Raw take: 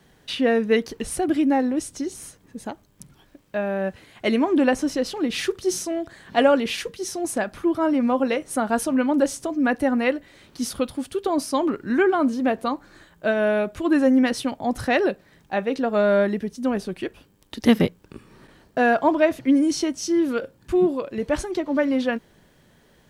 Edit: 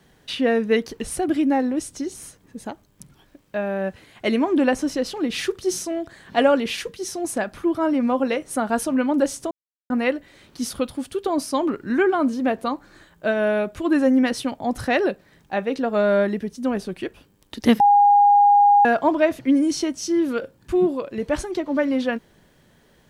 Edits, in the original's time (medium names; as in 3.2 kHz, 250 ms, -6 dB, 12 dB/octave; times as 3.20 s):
9.51–9.90 s: mute
17.80–18.85 s: bleep 816 Hz -10.5 dBFS